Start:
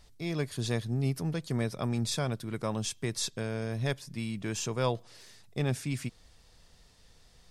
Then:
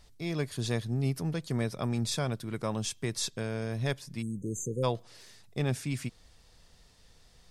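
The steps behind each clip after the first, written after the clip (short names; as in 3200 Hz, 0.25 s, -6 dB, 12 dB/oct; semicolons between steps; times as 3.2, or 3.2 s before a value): spectral delete 4.22–4.84, 550–6100 Hz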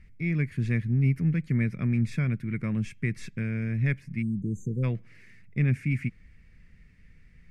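EQ curve 120 Hz 0 dB, 190 Hz +3 dB, 840 Hz -24 dB, 2200 Hz +4 dB, 3500 Hz -23 dB; gain +6.5 dB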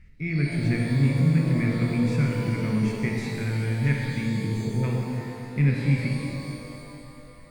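shimmer reverb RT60 2.6 s, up +12 st, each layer -8 dB, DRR -1.5 dB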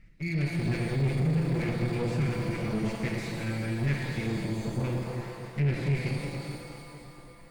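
minimum comb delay 5.9 ms; soft clip -19 dBFS, distortion -15 dB; gain -2 dB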